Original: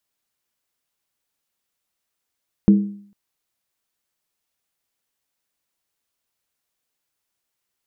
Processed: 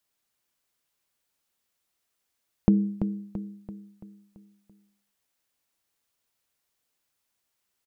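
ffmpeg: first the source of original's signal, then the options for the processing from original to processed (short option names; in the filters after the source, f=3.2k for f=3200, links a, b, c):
-f lavfi -i "aevalsrc='0.501*pow(10,-3*t/0.56)*sin(2*PI*202*t)+0.158*pow(10,-3*t/0.444)*sin(2*PI*322*t)+0.0501*pow(10,-3*t/0.383)*sin(2*PI*431.5*t)+0.0158*pow(10,-3*t/0.37)*sin(2*PI*463.8*t)+0.00501*pow(10,-3*t/0.344)*sin(2*PI*535.9*t)':d=0.45:s=44100"
-filter_complex "[0:a]acompressor=threshold=-16dB:ratio=6,asplit=2[a][b];[b]aecho=0:1:336|672|1008|1344|1680|2016:0.355|0.174|0.0852|0.0417|0.0205|0.01[c];[a][c]amix=inputs=2:normalize=0"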